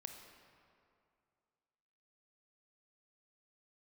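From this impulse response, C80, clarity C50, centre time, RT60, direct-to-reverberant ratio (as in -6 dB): 6.5 dB, 5.0 dB, 50 ms, 2.4 s, 4.0 dB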